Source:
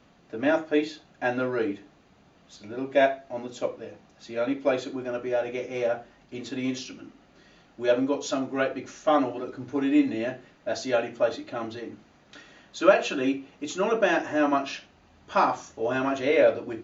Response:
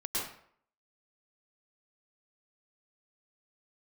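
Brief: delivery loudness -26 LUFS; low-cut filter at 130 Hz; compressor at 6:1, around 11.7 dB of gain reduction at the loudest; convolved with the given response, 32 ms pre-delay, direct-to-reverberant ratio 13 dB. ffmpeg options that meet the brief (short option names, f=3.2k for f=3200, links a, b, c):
-filter_complex "[0:a]highpass=130,acompressor=threshold=-24dB:ratio=6,asplit=2[a][b];[1:a]atrim=start_sample=2205,adelay=32[c];[b][c]afir=irnorm=-1:irlink=0,volume=-18dB[d];[a][d]amix=inputs=2:normalize=0,volume=5.5dB"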